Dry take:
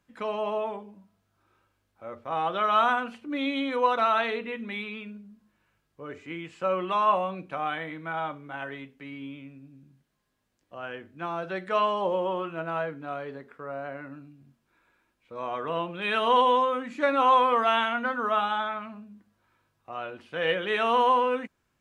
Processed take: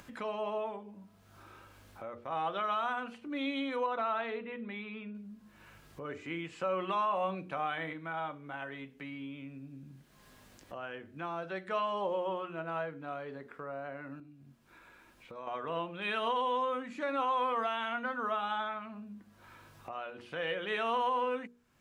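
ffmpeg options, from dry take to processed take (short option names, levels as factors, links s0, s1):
-filter_complex "[0:a]asettb=1/sr,asplit=3[s0][s1][s2];[s0]atrim=end=3.864[s3];[s1]atrim=start=3.86:end=5.15,asetpts=PTS-STARTPTS,afade=t=in:d=0.004:c=qsin,afade=t=out:st=1.286:d=0.004:c=qsin,lowpass=f=1800:p=1[s4];[s2]atrim=start=5.146[s5];[s3][s4]acrossfade=d=0.004:c1=hsin:c2=qsin[s6];[s6][s5]acrossfade=d=0.004:c1=qsin:c2=hsin,asplit=5[s7][s8][s9][s10][s11];[s7]atrim=end=6.052[s12];[s8]atrim=start=6.048:end=7.932,asetpts=PTS-STARTPTS,volume=1.68[s13];[s9]atrim=start=7.928:end=14.202[s14];[s10]atrim=start=14.198:end=15.472,asetpts=PTS-STARTPTS,volume=0.335[s15];[s11]atrim=start=15.468[s16];[s12][s13]acrossfade=d=0.004:c1=hsin:c2=hsin[s17];[s17][s14]acrossfade=d=0.004:c1=hsin:c2=hsin[s18];[s18][s15]acrossfade=d=0.004:c1=hsin:c2=hsin[s19];[s19][s16]acrossfade=d=0.004:c1=hsin:c2=hsin,bandreject=f=60:t=h:w=6,bandreject=f=120:t=h:w=6,bandreject=f=180:t=h:w=6,bandreject=f=240:t=h:w=6,bandreject=f=300:t=h:w=6,bandreject=f=360:t=h:w=6,bandreject=f=420:t=h:w=6,bandreject=f=480:t=h:w=6,alimiter=limit=0.133:level=0:latency=1:release=126,acompressor=mode=upward:threshold=0.0282:ratio=2.5,volume=0.501"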